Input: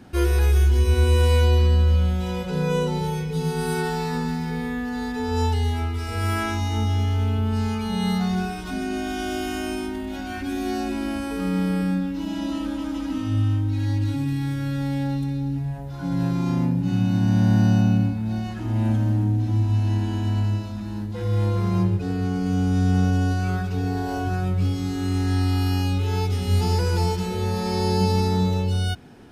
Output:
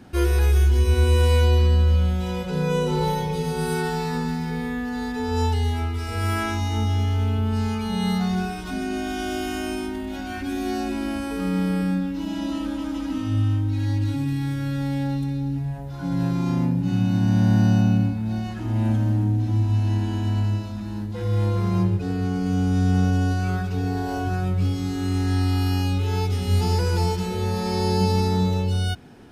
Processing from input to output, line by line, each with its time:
2.81–3.34 s: reverb throw, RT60 1.6 s, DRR -1.5 dB

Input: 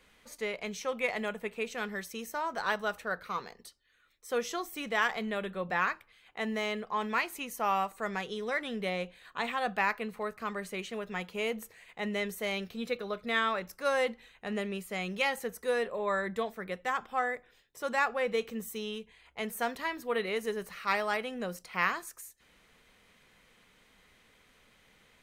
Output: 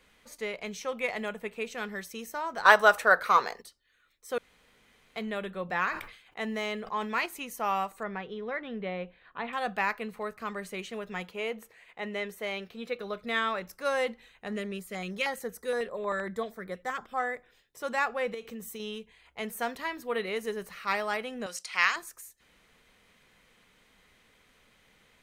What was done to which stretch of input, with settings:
2.65–3.62 s: FFT filter 180 Hz 0 dB, 350 Hz +7 dB, 610 Hz +13 dB, 1.5 kHz +14 dB, 3 kHz +9 dB, 9.6 kHz +14 dB, 15 kHz +11 dB
4.38–5.16 s: room tone
5.77–7.26 s: decay stretcher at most 90 dB/s
8.03–9.53 s: distance through air 370 m
11.31–12.99 s: tone controls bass -7 dB, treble -7 dB
14.48–17.20 s: LFO notch square 6.4 Hz 860–2700 Hz
18.34–18.80 s: compression, threshold -36 dBFS
21.46–21.96 s: frequency weighting ITU-R 468

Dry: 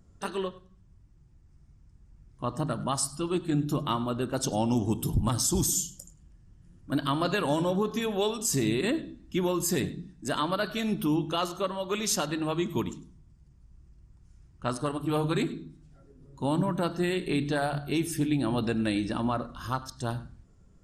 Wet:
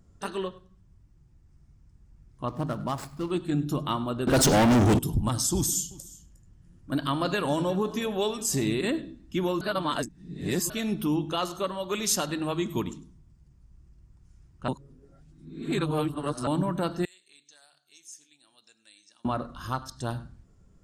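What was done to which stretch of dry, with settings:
2.48–3.31 s: median filter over 15 samples
4.27–4.99 s: waveshaping leveller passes 5
5.55–8.77 s: delay 359 ms -20.5 dB
9.61–10.70 s: reverse
11.51–12.79 s: treble shelf 7.3 kHz +5.5 dB
14.68–16.47 s: reverse
17.05–19.25 s: band-pass filter 6.5 kHz, Q 5.7

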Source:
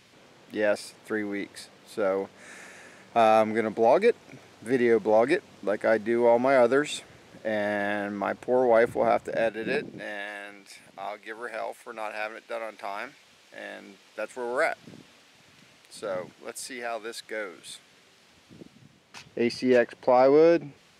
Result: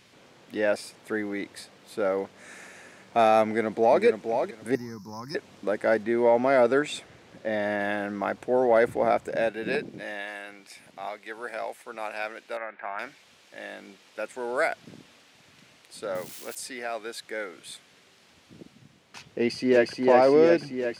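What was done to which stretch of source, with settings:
3.45–4.03 s: echo throw 470 ms, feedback 20%, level -6.5 dB
4.75–5.35 s: FFT filter 160 Hz 0 dB, 260 Hz -12 dB, 450 Hz -25 dB, 670 Hz -29 dB, 1 kHz -4 dB, 2 kHz -22 dB, 3.5 kHz -25 dB, 5.4 kHz +11 dB, 8.3 kHz -15 dB, 13 kHz +11 dB
6.03–7.81 s: treble shelf 8.4 kHz -6 dB
12.57–12.99 s: cabinet simulation 170–2300 Hz, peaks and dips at 280 Hz -9 dB, 470 Hz -6 dB, 1.6 kHz +9 dB
16.15–16.55 s: zero-crossing glitches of -33.5 dBFS
19.25–19.95 s: echo throw 360 ms, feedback 70%, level -3 dB

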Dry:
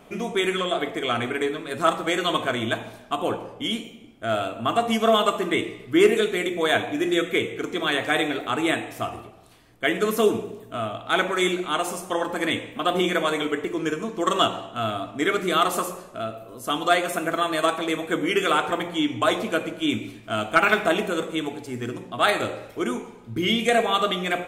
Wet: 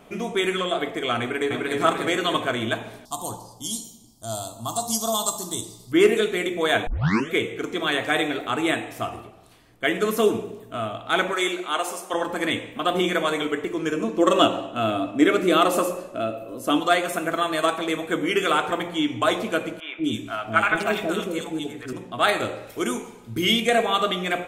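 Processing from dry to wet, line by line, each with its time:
1.20–1.79 s: echo throw 300 ms, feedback 50%, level -1.5 dB
3.05–5.92 s: FFT filter 120 Hz 0 dB, 480 Hz -14 dB, 940 Hz 0 dB, 1.6 kHz -22 dB, 2.4 kHz -27 dB, 4.5 kHz +15 dB
6.87 s: tape start 0.44 s
11.33–12.14 s: high-pass 370 Hz
13.94–16.80 s: small resonant body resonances 300/540/2600 Hz, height 10 dB, ringing for 30 ms
19.80–21.93 s: three bands offset in time mids, lows, highs 180/240 ms, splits 610/2900 Hz
22.67–23.60 s: treble shelf 4.3 kHz +11 dB

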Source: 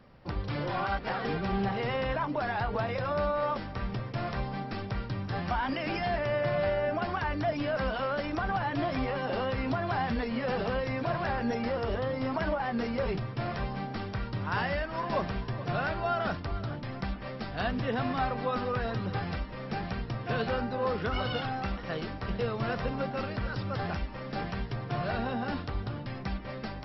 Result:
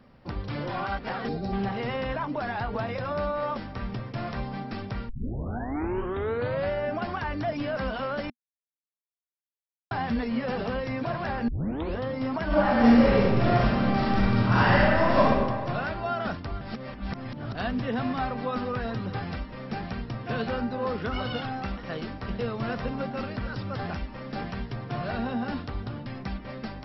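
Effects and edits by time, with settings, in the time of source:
1.28–1.53 s: time-frequency box 860–3600 Hz -12 dB
5.09 s: tape start 1.61 s
8.30–9.91 s: mute
11.48 s: tape start 0.48 s
12.46–15.21 s: reverb throw, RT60 1.6 s, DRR -9.5 dB
16.61–17.55 s: reverse
whole clip: peaking EQ 240 Hz +6 dB 0.32 oct

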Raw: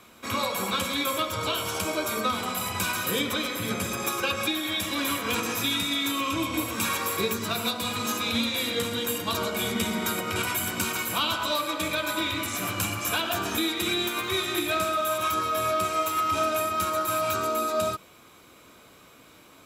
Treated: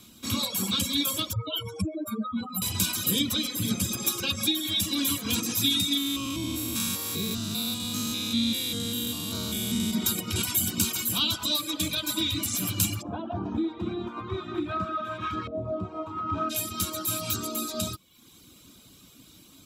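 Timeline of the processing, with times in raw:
1.33–2.62 s: spectral contrast enhancement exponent 3.3
5.97–9.93 s: spectrogram pixelated in time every 200 ms
13.01–16.49 s: LFO low-pass saw up 0.17 Hz -> 0.87 Hz 590–1900 Hz
whole clip: high-order bell 980 Hz -14.5 dB 2.9 oct; reverb removal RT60 0.7 s; trim +5.5 dB

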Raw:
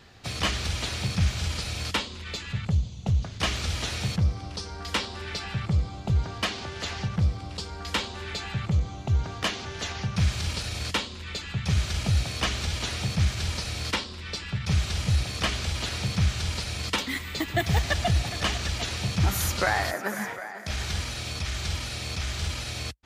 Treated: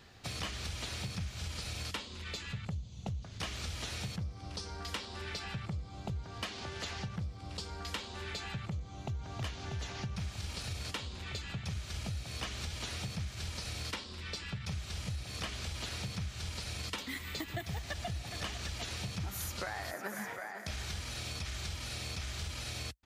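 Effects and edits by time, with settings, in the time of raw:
8.89–9.37 s: echo throw 320 ms, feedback 80%, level -2 dB
whole clip: treble shelf 10 kHz +5 dB; compression, threshold -31 dBFS; trim -5 dB

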